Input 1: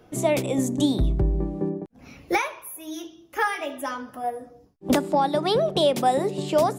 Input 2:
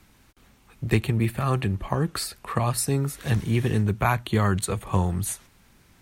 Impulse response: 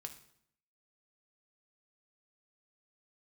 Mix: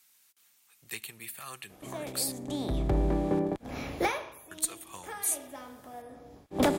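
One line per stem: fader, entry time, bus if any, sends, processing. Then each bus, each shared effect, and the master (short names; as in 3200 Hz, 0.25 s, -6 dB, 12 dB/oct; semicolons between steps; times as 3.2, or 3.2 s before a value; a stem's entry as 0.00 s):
-5.5 dB, 1.70 s, no send, per-bin compression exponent 0.6; auto duck -15 dB, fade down 0.55 s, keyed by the second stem
-1.0 dB, 0.00 s, muted 2.32–4.51, send -10.5 dB, differentiator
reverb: on, RT60 0.65 s, pre-delay 3 ms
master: one-sided clip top -20.5 dBFS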